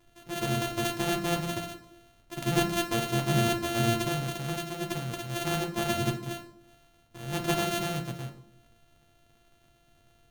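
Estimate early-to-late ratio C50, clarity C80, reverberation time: 11.5 dB, 15.0 dB, 0.75 s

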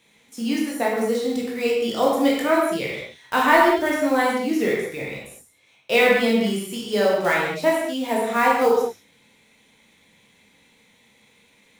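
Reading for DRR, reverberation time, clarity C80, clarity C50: -4.5 dB, no single decay rate, 3.5 dB, 0.5 dB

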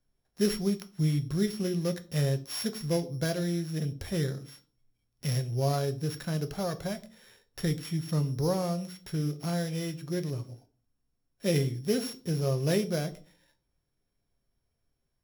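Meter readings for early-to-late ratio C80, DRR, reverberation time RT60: 22.5 dB, 8.5 dB, 0.40 s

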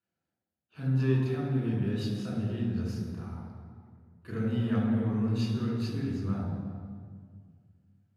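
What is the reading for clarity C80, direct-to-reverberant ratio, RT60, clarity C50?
2.5 dB, -5.0 dB, 1.9 s, 0.5 dB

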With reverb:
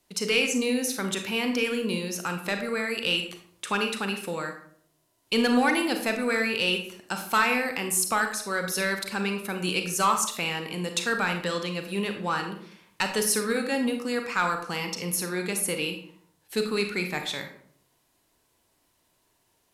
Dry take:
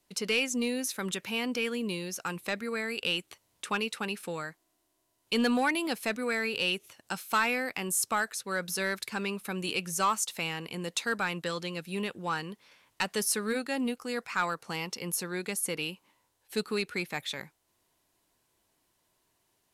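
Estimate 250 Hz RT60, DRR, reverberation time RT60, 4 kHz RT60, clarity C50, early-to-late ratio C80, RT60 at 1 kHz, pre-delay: 0.70 s, 5.0 dB, 0.60 s, 0.40 s, 7.5 dB, 11.0 dB, 0.55 s, 32 ms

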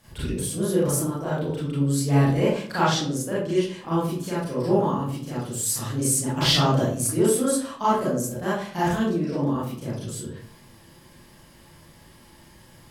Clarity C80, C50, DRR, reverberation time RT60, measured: 6.0 dB, 0.5 dB, -9.5 dB, 0.55 s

